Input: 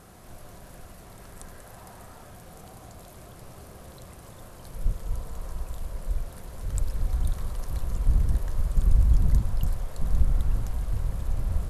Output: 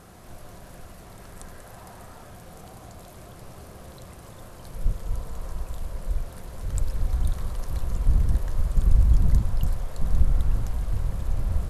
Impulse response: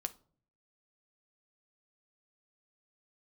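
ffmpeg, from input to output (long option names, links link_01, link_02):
-filter_complex "[0:a]asplit=2[link_01][link_02];[1:a]atrim=start_sample=2205,lowpass=8800[link_03];[link_02][link_03]afir=irnorm=-1:irlink=0,volume=-10.5dB[link_04];[link_01][link_04]amix=inputs=2:normalize=0"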